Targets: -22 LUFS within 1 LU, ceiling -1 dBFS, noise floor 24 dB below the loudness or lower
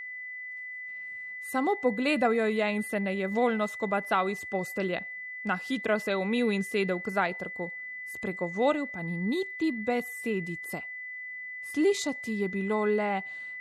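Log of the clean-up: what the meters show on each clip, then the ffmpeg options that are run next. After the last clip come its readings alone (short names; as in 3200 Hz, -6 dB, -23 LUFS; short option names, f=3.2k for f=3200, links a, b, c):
steady tone 2000 Hz; tone level -37 dBFS; loudness -30.0 LUFS; peak -13.5 dBFS; loudness target -22.0 LUFS
-> -af "bandreject=f=2k:w=30"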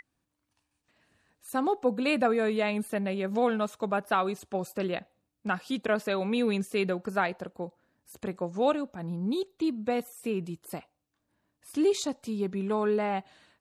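steady tone none; loudness -30.0 LUFS; peak -14.0 dBFS; loudness target -22.0 LUFS
-> -af "volume=8dB"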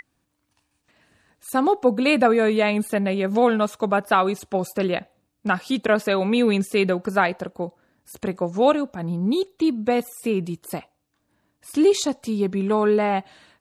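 loudness -22.0 LUFS; peak -6.0 dBFS; noise floor -73 dBFS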